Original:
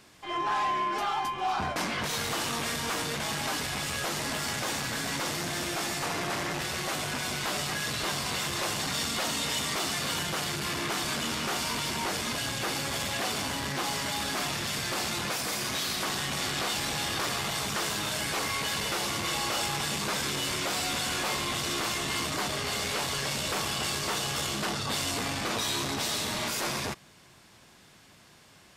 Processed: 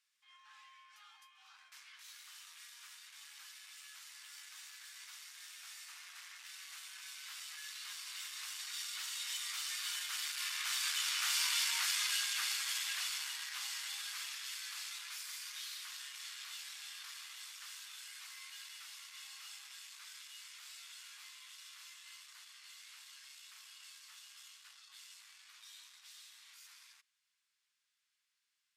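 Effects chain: Doppler pass-by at 11.67, 8 m/s, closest 6.7 m; Bessel high-pass 2000 Hz, order 6; gain +1 dB

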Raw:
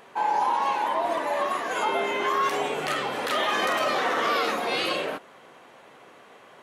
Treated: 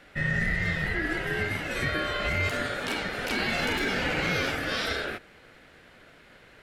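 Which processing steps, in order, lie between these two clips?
ring modulator 1000 Hz

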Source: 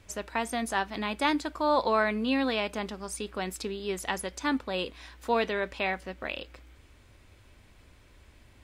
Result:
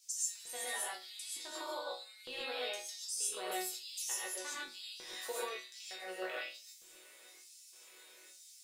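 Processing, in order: tilt +4 dB/oct; compressor 6:1, threshold -36 dBFS, peak gain reduction 16.5 dB; LFO high-pass square 1.1 Hz 430–5600 Hz; resonator bank B2 sus4, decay 0.31 s; non-linear reverb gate 0.16 s rising, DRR -5.5 dB; gain +6 dB

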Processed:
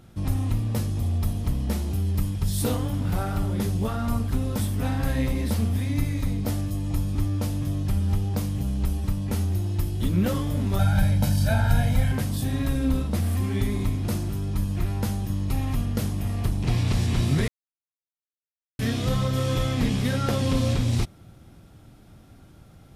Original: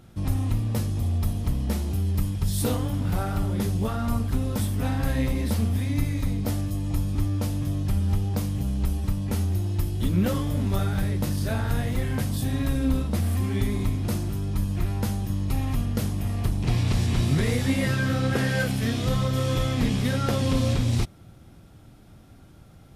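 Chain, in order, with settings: 10.79–12.12 comb 1.3 ms, depth 100%; 17.48–18.79 mute

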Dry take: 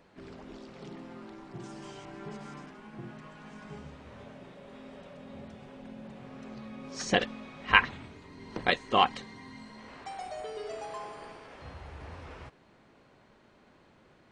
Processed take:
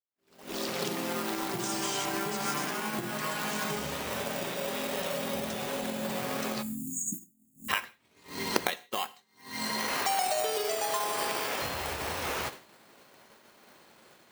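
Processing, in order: recorder AGC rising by 48 dB/s; in parallel at -10 dB: decimation with a swept rate 16×, swing 60% 0.28 Hz; on the sum: spectral delete 6.62–7.69, 330–6600 Hz; expander -19 dBFS; RIAA curve recording; on a send at -15 dB: reverb, pre-delay 3 ms; on the sum: gain -14.5 dB

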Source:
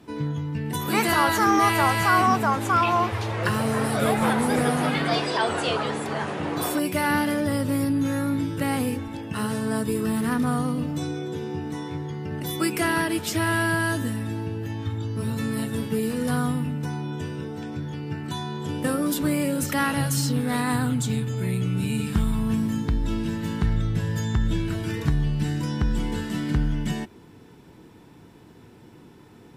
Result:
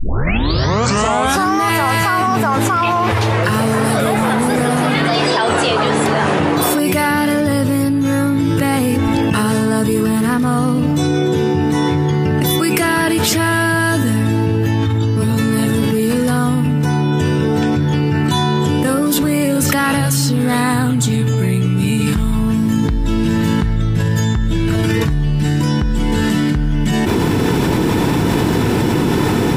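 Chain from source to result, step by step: tape start at the beginning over 1.58 s; fast leveller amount 100%; gain +2.5 dB

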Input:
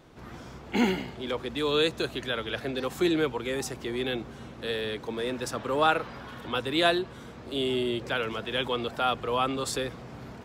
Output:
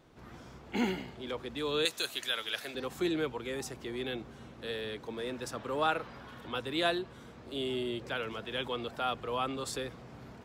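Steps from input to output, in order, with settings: 1.85–2.75 tilt +4.5 dB/oct; gain -6.5 dB

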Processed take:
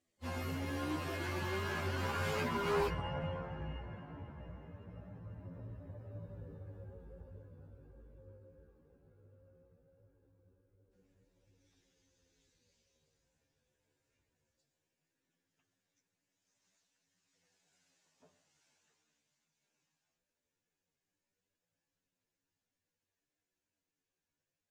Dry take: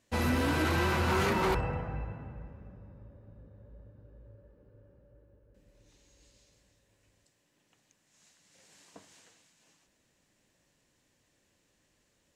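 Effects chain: Doppler pass-by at 3.17, 24 m/s, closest 11 m; chorus voices 2, 0.36 Hz, delay 12 ms, depth 1.7 ms; plain phase-vocoder stretch 2×; gain +9.5 dB

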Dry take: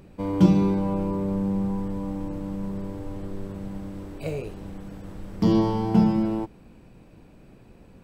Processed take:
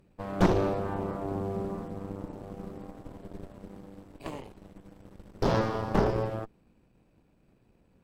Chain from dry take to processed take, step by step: added harmonics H 3 -11 dB, 7 -26 dB, 8 -17 dB, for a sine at -4.5 dBFS; soft clip -11 dBFS, distortion -16 dB

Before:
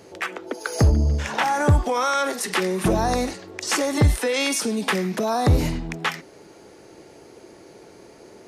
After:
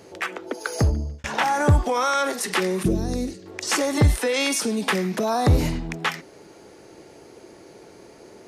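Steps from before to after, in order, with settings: 0.67–1.24 fade out; 2.83–3.46 EQ curve 380 Hz 0 dB, 860 Hz -19 dB, 5200 Hz -6 dB

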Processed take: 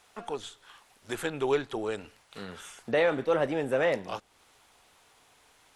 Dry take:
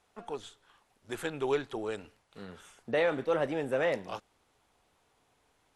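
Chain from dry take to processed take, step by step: mismatched tape noise reduction encoder only; gain +3 dB

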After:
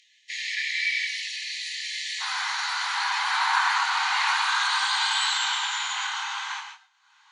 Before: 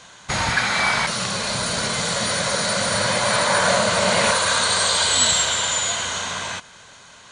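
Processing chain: gate with hold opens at -31 dBFS; upward compressor, threshold -40 dBFS; Gaussian blur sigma 1.6 samples; chorus voices 6, 0.69 Hz, delay 23 ms, depth 4.3 ms; brick-wall FIR high-pass 1700 Hz, from 2.2 s 750 Hz; non-linear reverb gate 0.17 s rising, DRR 5.5 dB; AAC 48 kbps 44100 Hz

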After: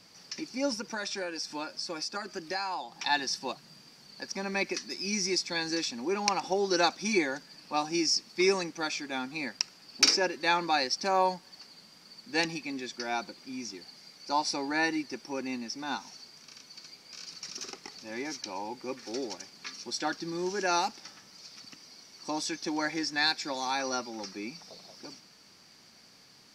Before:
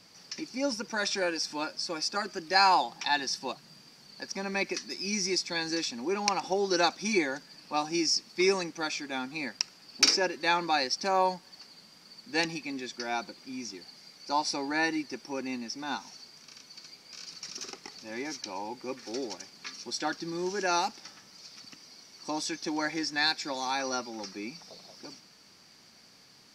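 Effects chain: 0.74–3.02 compressor 6:1, threshold -32 dBFS, peak gain reduction 13 dB

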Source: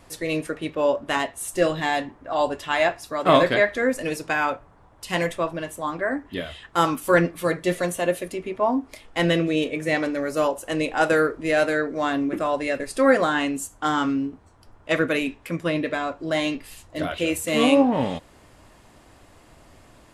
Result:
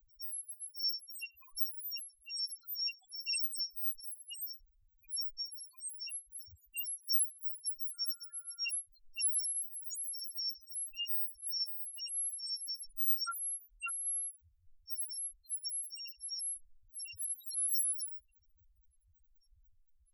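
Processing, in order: FFT order left unsorted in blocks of 256 samples; loudest bins only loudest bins 1; 7.93–8.67 whine 1400 Hz -64 dBFS; gain -3 dB

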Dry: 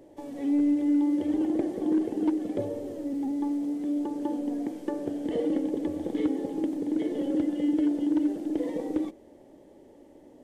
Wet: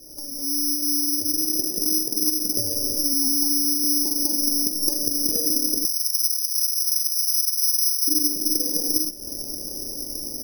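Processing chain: opening faded in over 3.21 s; compressor 3:1, threshold -37 dBFS, peak gain reduction 12 dB; tilt -4 dB/oct; upward compressor, threshold -31 dBFS; careless resampling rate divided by 8×, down none, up zero stuff; 5.85–8.08 inverse Chebyshev high-pass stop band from 990 Hz, stop band 60 dB; outdoor echo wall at 230 m, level -29 dB; gain -1 dB

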